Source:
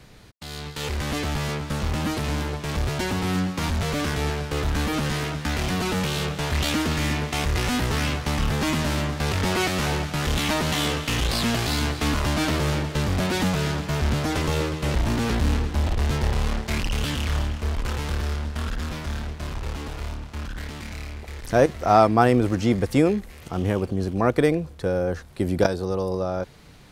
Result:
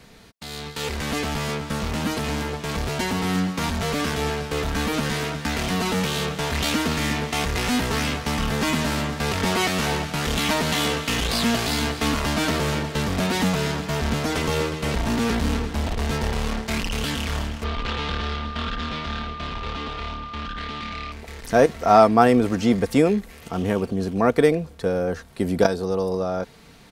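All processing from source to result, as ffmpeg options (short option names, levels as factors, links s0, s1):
-filter_complex "[0:a]asettb=1/sr,asplit=3[s0][s1][s2];[s0]atrim=end=17.644[s3];[s1]atrim=start=17.64:end=21.12,asetpts=PTS-STARTPTS,afade=t=in:d=0.004:c=qsin,afade=t=out:st=3.476:d=0.004:c=qsin,lowpass=f=3600:t=q:w=2.2,aeval=exprs='val(0)+0.0178*sin(2*PI*1200*n/s)':c=same[s4];[s2]atrim=start=21.116[s5];[s3][s4]acrossfade=d=0.004:c1=hsin:c2=qsin[s6];[s6][s5]acrossfade=d=0.004:c1=qsin:c2=hsin,lowshelf=f=78:g=-8,aecho=1:1:4.4:0.36,volume=1.19"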